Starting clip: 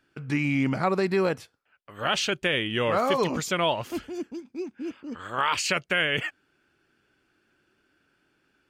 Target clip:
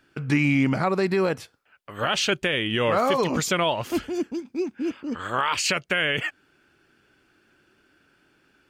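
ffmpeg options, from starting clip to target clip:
-af "alimiter=limit=-19dB:level=0:latency=1:release=241,volume=6.5dB"

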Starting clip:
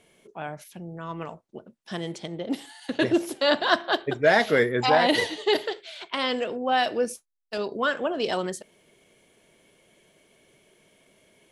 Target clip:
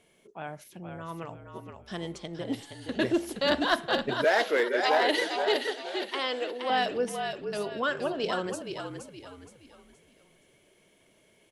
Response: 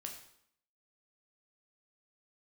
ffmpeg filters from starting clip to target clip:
-filter_complex "[0:a]asplit=5[a][b][c][d][e];[b]adelay=470,afreqshift=-49,volume=-6.5dB[f];[c]adelay=940,afreqshift=-98,volume=-15.6dB[g];[d]adelay=1410,afreqshift=-147,volume=-24.7dB[h];[e]adelay=1880,afreqshift=-196,volume=-33.9dB[i];[a][f][g][h][i]amix=inputs=5:normalize=0,aeval=exprs='clip(val(0),-1,0.188)':c=same,asettb=1/sr,asplit=3[j][k][l];[j]atrim=end=4.244[m];[k]atrim=start=4.24:end=6.7,asetpts=PTS-STARTPTS,afade=t=in:d=0.004:c=qsin,afade=t=out:st=2.456:d=0.004:c=qsin,highpass=f=310:w=0.5412,highpass=f=310:w=1.3066[n];[l]atrim=start=6.696[o];[m][n]acrossfade=d=0.004:c1=hsin:c2=qsin[p];[p][o]acrossfade=d=0.004:c1=qsin:c2=hsin,volume=-4dB"

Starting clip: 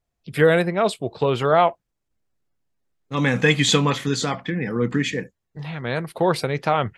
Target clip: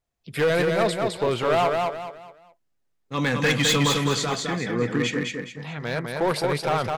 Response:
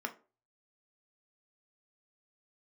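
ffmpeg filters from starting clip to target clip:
-filter_complex "[0:a]lowshelf=f=340:g=-4,asoftclip=type=hard:threshold=-16dB,asplit=2[a][b];[b]aecho=0:1:210|420|630|840:0.668|0.221|0.0728|0.024[c];[a][c]amix=inputs=2:normalize=0,volume=-1dB"

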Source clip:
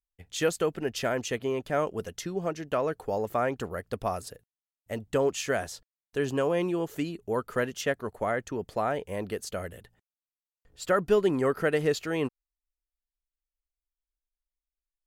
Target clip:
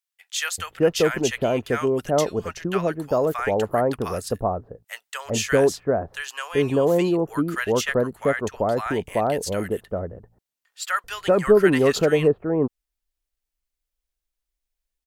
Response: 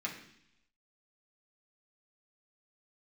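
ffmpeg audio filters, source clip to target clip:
-filter_complex "[0:a]asettb=1/sr,asplit=3[a][b][c];[a]atrim=end=4.284[d];[b]atrim=start=4.28:end=5,asetpts=PTS-STARTPTS,afade=t=in:d=0.004:c=qsin,afade=t=out:st=0.716:d=0.004:c=qsin,asplit=2[e][f];[f]adelay=17,volume=-10.5dB[g];[e][g]amix=inputs=2:normalize=0,atrim=end_sample=31752[h];[c]atrim=start=4.996[i];[d][h]acrossfade=d=0.004:c1=hsin:c2=qsin[j];[j][i]acrossfade=d=0.004:c1=qsin:c2=hsin,acrossover=split=1100[k][l];[k]adelay=390[m];[m][l]amix=inputs=2:normalize=0,volume=8dB"

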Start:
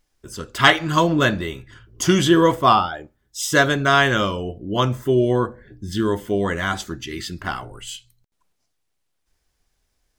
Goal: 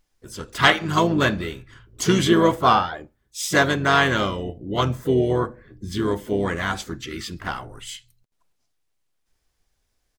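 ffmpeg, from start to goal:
-filter_complex "[0:a]asplit=4[a][b][c][d];[b]asetrate=29433,aresample=44100,atempo=1.49831,volume=-11dB[e];[c]asetrate=52444,aresample=44100,atempo=0.840896,volume=-14dB[f];[d]asetrate=55563,aresample=44100,atempo=0.793701,volume=-17dB[g];[a][e][f][g]amix=inputs=4:normalize=0,volume=-2.5dB"

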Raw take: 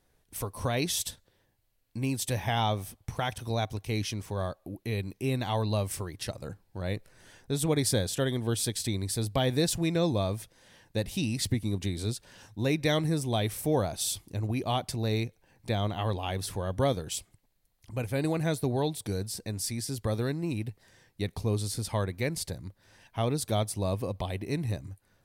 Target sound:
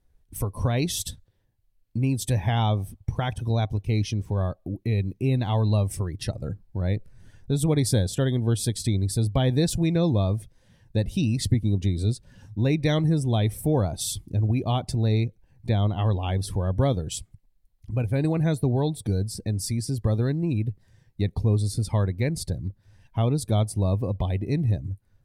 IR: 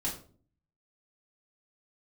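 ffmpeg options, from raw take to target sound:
-filter_complex "[0:a]lowshelf=f=240:g=11,afftdn=nr=12:nf=-44,asplit=2[a][b];[b]acompressor=threshold=-31dB:ratio=6,volume=-1.5dB[c];[a][c]amix=inputs=2:normalize=0,volume=-2dB"

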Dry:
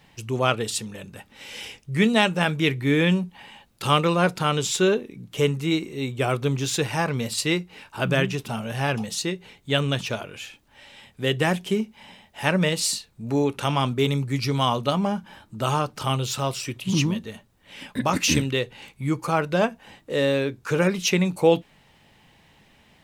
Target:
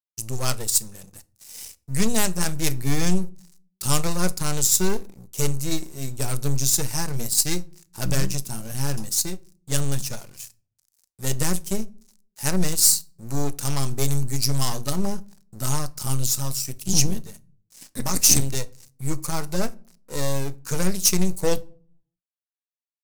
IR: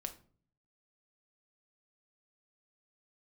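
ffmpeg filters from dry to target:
-filter_complex "[0:a]equalizer=f=79:t=o:w=2.5:g=9,aeval=exprs='0.708*(cos(1*acos(clip(val(0)/0.708,-1,1)))-cos(1*PI/2))+0.0794*(cos(8*acos(clip(val(0)/0.708,-1,1)))-cos(8*PI/2))':c=same,aeval=exprs='sgn(val(0))*max(abs(val(0))-0.0112,0)':c=same,aexciter=amount=9.4:drive=3.5:freq=4.6k,asplit=2[a][b];[1:a]atrim=start_sample=2205,lowshelf=f=82:g=11.5[c];[b][c]afir=irnorm=-1:irlink=0,volume=-5dB[d];[a][d]amix=inputs=2:normalize=0,volume=-11dB"

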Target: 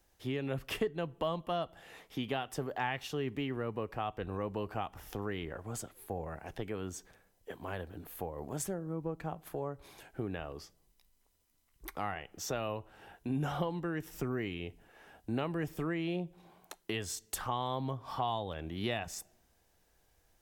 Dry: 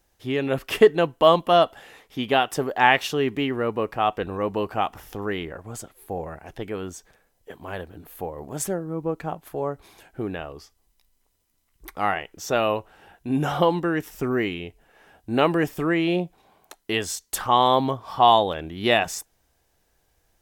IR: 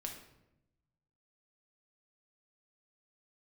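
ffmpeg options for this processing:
-filter_complex "[0:a]asplit=2[a][b];[1:a]atrim=start_sample=2205,asetrate=57330,aresample=44100[c];[b][c]afir=irnorm=-1:irlink=0,volume=-18dB[d];[a][d]amix=inputs=2:normalize=0,acrossover=split=140[e][f];[f]acompressor=threshold=-33dB:ratio=3[g];[e][g]amix=inputs=2:normalize=0,volume=-4dB"

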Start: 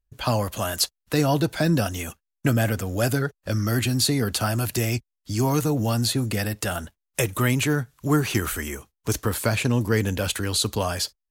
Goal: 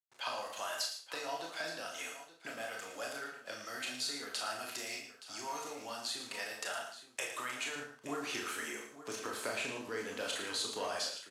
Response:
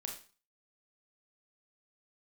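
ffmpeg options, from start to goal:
-filter_complex "[0:a]acompressor=threshold=-24dB:ratio=6,acrusher=bits=7:mix=0:aa=0.000001,asetnsamples=n=441:p=0,asendcmd='7.76 highpass f 420',highpass=730,lowpass=7.5k,aecho=1:1:112|872:0.335|0.2[a];[1:a]atrim=start_sample=2205,asetrate=48510,aresample=44100[b];[a][b]afir=irnorm=-1:irlink=0,volume=-4dB"

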